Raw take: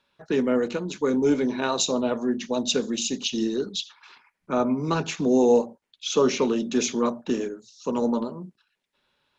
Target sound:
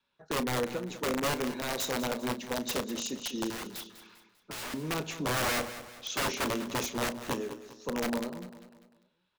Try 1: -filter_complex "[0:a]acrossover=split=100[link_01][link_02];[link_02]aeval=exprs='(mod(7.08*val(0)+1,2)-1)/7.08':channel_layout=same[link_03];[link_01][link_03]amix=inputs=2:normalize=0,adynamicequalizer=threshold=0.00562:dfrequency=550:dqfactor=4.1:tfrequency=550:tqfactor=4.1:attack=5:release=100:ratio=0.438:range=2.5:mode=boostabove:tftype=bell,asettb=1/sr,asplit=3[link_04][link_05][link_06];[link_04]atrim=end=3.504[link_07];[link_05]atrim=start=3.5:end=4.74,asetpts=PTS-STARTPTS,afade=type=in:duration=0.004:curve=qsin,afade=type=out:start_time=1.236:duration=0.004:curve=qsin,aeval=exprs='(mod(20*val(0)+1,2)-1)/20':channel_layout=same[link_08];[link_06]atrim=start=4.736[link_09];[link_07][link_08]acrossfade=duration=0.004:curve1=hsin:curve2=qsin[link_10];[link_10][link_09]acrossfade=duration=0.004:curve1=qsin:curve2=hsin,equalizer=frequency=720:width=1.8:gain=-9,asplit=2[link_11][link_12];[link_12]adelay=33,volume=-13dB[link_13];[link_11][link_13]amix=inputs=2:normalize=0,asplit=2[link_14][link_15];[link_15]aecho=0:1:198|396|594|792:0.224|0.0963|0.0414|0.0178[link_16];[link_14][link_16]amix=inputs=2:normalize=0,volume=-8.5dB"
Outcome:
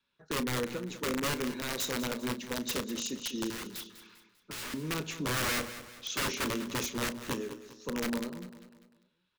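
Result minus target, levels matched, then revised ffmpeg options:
1,000 Hz band −2.5 dB
-filter_complex "[0:a]acrossover=split=100[link_01][link_02];[link_02]aeval=exprs='(mod(7.08*val(0)+1,2)-1)/7.08':channel_layout=same[link_03];[link_01][link_03]amix=inputs=2:normalize=0,adynamicequalizer=threshold=0.00562:dfrequency=550:dqfactor=4.1:tfrequency=550:tqfactor=4.1:attack=5:release=100:ratio=0.438:range=2.5:mode=boostabove:tftype=bell,asettb=1/sr,asplit=3[link_04][link_05][link_06];[link_04]atrim=end=3.504[link_07];[link_05]atrim=start=3.5:end=4.74,asetpts=PTS-STARTPTS,afade=type=in:duration=0.004:curve=qsin,afade=type=out:start_time=1.236:duration=0.004:curve=qsin,aeval=exprs='(mod(20*val(0)+1,2)-1)/20':channel_layout=same[link_08];[link_06]atrim=start=4.736[link_09];[link_07][link_08]acrossfade=duration=0.004:curve1=hsin:curve2=qsin[link_10];[link_10][link_09]acrossfade=duration=0.004:curve1=qsin:curve2=hsin,asplit=2[link_11][link_12];[link_12]adelay=33,volume=-13dB[link_13];[link_11][link_13]amix=inputs=2:normalize=0,asplit=2[link_14][link_15];[link_15]aecho=0:1:198|396|594|792:0.224|0.0963|0.0414|0.0178[link_16];[link_14][link_16]amix=inputs=2:normalize=0,volume=-8.5dB"

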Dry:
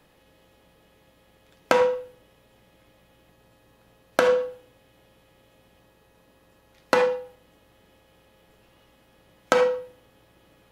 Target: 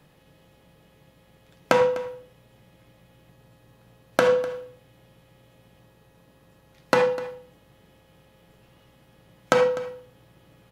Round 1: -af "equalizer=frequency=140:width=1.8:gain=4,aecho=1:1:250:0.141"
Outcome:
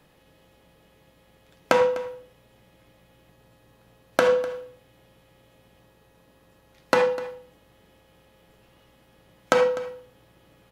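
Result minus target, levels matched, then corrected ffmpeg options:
125 Hz band −4.5 dB
-af "equalizer=frequency=140:width=1.8:gain=10.5,aecho=1:1:250:0.141"

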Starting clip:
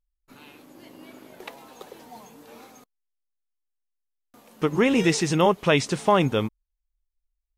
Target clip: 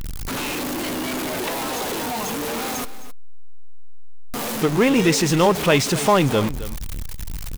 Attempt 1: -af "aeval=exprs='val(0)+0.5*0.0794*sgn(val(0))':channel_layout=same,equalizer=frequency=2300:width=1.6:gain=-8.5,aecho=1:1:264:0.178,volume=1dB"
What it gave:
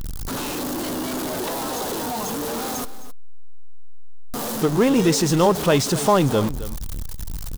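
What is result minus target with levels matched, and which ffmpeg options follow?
2,000 Hz band −5.0 dB
-af "aeval=exprs='val(0)+0.5*0.0794*sgn(val(0))':channel_layout=same,aecho=1:1:264:0.178,volume=1dB"

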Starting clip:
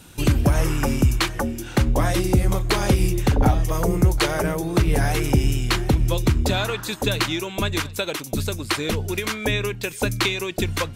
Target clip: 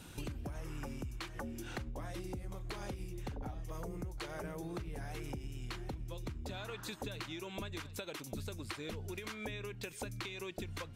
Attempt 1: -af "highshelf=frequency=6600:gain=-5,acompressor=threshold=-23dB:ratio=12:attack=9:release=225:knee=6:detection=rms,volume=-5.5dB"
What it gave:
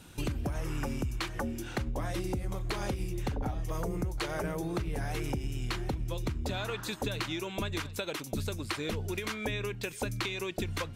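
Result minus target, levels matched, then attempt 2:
downward compressor: peak gain reduction −9 dB
-af "highshelf=frequency=6600:gain=-5,acompressor=threshold=-33dB:ratio=12:attack=9:release=225:knee=6:detection=rms,volume=-5.5dB"

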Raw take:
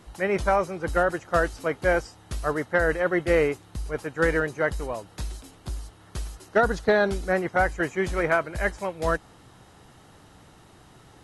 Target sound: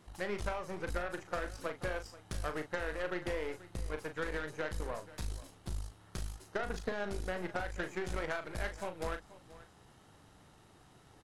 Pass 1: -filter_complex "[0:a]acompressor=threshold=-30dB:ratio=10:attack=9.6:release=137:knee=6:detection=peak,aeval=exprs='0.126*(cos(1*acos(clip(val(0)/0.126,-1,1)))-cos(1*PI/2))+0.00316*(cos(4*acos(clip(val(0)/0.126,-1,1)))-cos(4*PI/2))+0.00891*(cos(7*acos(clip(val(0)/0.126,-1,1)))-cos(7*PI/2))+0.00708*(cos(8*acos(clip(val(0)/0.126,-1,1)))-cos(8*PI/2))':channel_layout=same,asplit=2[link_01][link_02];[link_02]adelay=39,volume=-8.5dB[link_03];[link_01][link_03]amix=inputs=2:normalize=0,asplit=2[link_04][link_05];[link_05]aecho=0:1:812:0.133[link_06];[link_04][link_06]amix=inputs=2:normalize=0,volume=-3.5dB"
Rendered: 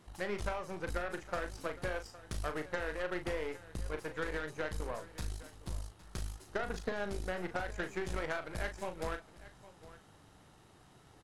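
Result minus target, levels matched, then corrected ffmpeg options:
echo 329 ms late
-filter_complex "[0:a]acompressor=threshold=-30dB:ratio=10:attack=9.6:release=137:knee=6:detection=peak,aeval=exprs='0.126*(cos(1*acos(clip(val(0)/0.126,-1,1)))-cos(1*PI/2))+0.00316*(cos(4*acos(clip(val(0)/0.126,-1,1)))-cos(4*PI/2))+0.00891*(cos(7*acos(clip(val(0)/0.126,-1,1)))-cos(7*PI/2))+0.00708*(cos(8*acos(clip(val(0)/0.126,-1,1)))-cos(8*PI/2))':channel_layout=same,asplit=2[link_01][link_02];[link_02]adelay=39,volume=-8.5dB[link_03];[link_01][link_03]amix=inputs=2:normalize=0,asplit=2[link_04][link_05];[link_05]aecho=0:1:483:0.133[link_06];[link_04][link_06]amix=inputs=2:normalize=0,volume=-3.5dB"

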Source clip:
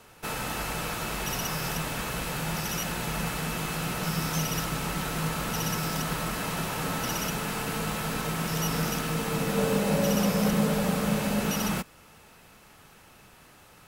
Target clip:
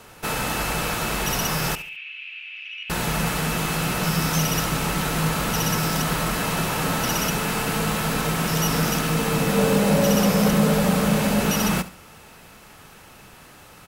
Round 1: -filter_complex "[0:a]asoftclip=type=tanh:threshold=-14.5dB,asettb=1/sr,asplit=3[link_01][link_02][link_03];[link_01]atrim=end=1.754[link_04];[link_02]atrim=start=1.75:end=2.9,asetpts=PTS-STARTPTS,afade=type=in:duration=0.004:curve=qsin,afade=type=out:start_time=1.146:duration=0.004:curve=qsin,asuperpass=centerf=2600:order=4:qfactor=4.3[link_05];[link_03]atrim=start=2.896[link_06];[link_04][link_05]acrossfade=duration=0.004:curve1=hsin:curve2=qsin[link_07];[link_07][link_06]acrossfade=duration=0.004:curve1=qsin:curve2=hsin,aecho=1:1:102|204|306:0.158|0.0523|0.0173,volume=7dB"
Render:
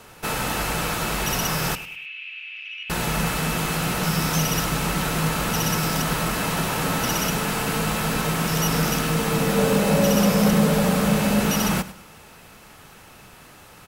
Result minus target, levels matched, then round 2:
echo 32 ms late
-filter_complex "[0:a]asoftclip=type=tanh:threshold=-14.5dB,asettb=1/sr,asplit=3[link_01][link_02][link_03];[link_01]atrim=end=1.754[link_04];[link_02]atrim=start=1.75:end=2.9,asetpts=PTS-STARTPTS,afade=type=in:duration=0.004:curve=qsin,afade=type=out:start_time=1.146:duration=0.004:curve=qsin,asuperpass=centerf=2600:order=4:qfactor=4.3[link_05];[link_03]atrim=start=2.896[link_06];[link_04][link_05]acrossfade=duration=0.004:curve1=hsin:curve2=qsin[link_07];[link_07][link_06]acrossfade=duration=0.004:curve1=qsin:curve2=hsin,aecho=1:1:70|140|210:0.158|0.0523|0.0173,volume=7dB"

